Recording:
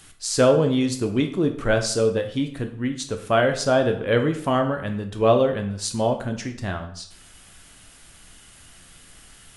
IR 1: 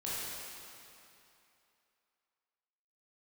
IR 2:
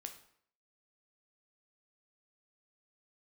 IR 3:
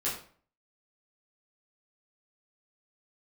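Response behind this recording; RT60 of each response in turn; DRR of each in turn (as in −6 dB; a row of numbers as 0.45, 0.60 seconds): 2; 2.8, 0.65, 0.45 seconds; −9.0, 5.0, −8.5 decibels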